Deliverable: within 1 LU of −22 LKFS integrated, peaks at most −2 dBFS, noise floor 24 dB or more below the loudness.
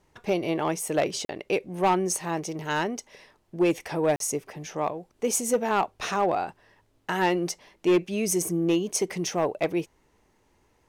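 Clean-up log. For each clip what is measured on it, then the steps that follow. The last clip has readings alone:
share of clipped samples 0.6%; peaks flattened at −16.0 dBFS; number of dropouts 2; longest dropout 42 ms; integrated loudness −27.0 LKFS; sample peak −16.0 dBFS; target loudness −22.0 LKFS
→ clipped peaks rebuilt −16 dBFS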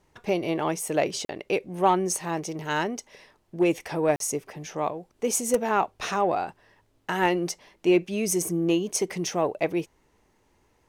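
share of clipped samples 0.0%; number of dropouts 2; longest dropout 42 ms
→ repair the gap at 0:01.25/0:04.16, 42 ms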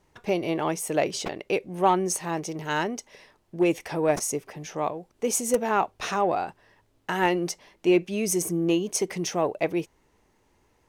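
number of dropouts 0; integrated loudness −26.5 LKFS; sample peak −8.0 dBFS; target loudness −22.0 LKFS
→ level +4.5 dB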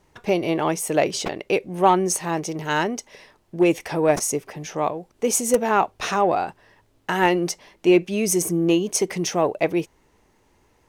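integrated loudness −22.0 LKFS; sample peak −3.5 dBFS; background noise floor −62 dBFS

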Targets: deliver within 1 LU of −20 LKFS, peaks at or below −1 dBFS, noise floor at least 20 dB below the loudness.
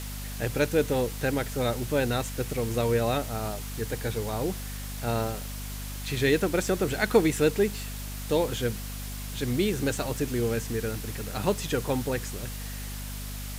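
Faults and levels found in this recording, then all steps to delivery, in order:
mains hum 50 Hz; hum harmonics up to 250 Hz; level of the hum −34 dBFS; background noise floor −36 dBFS; target noise floor −49 dBFS; integrated loudness −29.0 LKFS; sample peak −8.0 dBFS; target loudness −20.0 LKFS
→ hum removal 50 Hz, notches 5
broadband denoise 13 dB, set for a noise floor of −36 dBFS
level +9 dB
brickwall limiter −1 dBFS

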